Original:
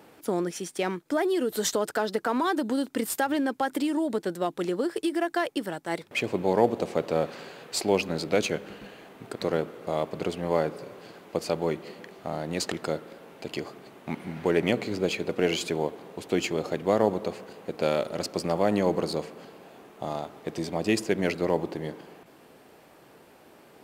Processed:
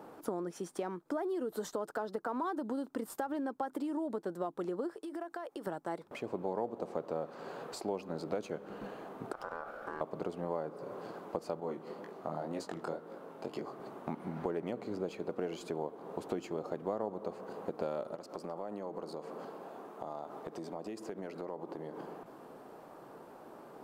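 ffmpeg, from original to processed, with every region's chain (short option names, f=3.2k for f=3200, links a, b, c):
-filter_complex "[0:a]asettb=1/sr,asplit=3[a][b][c];[a]atrim=end=4.954[d];[b]atrim=start=4.95:end=5.67,asetpts=PTS-STARTPTS,afade=t=in:d=0.004:c=qsin,afade=t=out:st=0.716:d=0.004:c=qsin,bass=f=250:g=-11,treble=f=4k:g=0,acompressor=threshold=-37dB:ratio=12:attack=3.2:release=140:knee=1:detection=peak[e];[c]atrim=start=5.666[f];[d][e]acrossfade=d=0.004:c1=hsin:c2=qsin[g];[g][f]acrossfade=d=0.004:c1=qsin:c2=hsin,asettb=1/sr,asplit=3[h][i][j];[h]atrim=end=9.324[k];[i]atrim=start=9.32:end=10.01,asetpts=PTS-STARTPTS,afade=t=in:d=0.004:c=qsin,afade=t=out:st=0.686:d=0.004:c=qsin,acompressor=threshold=-31dB:ratio=4:attack=3.2:release=140:knee=1:detection=peak,aeval=exprs='clip(val(0),-1,0.00841)':c=same,aeval=exprs='val(0)*sin(2*PI*1000*n/s)':c=same[l];[j]atrim=start=10.006[m];[k][l]acrossfade=d=0.004:c1=hsin:c2=qsin[n];[n][m]acrossfade=d=0.004:c1=qsin:c2=hsin,asettb=1/sr,asplit=3[o][p][q];[o]atrim=end=11.604[r];[p]atrim=start=11.6:end=13.8,asetpts=PTS-STARTPTS,afade=t=in:d=0.004:c=qsin,afade=t=out:st=2.196:d=0.004:c=qsin,highpass=93,flanger=delay=18.5:depth=6.5:speed=2[s];[q]atrim=start=13.796[t];[r][s]acrossfade=d=0.004:c1=hsin:c2=qsin[u];[u][t]acrossfade=d=0.004:c1=qsin:c2=hsin,asettb=1/sr,asplit=3[v][w][x];[v]atrim=end=18.154[y];[w]atrim=start=18.15:end=21.98,asetpts=PTS-STARTPTS,afade=t=in:d=0.004:c=qsin,afade=t=out:st=3.826:d=0.004:c=qsin,highpass=f=200:p=1,acompressor=threshold=-41dB:ratio=4:attack=3.2:release=140:knee=1:detection=peak[z];[x]atrim=start=21.976[aa];[y][z]acrossfade=d=0.004:c1=hsin:c2=qsin[ab];[ab][aa]acrossfade=d=0.004:c1=qsin:c2=hsin,equalizer=f=70:w=0.97:g=-9.5,acompressor=threshold=-38dB:ratio=4,highshelf=f=1.6k:t=q:w=1.5:g=-9.5,volume=2dB"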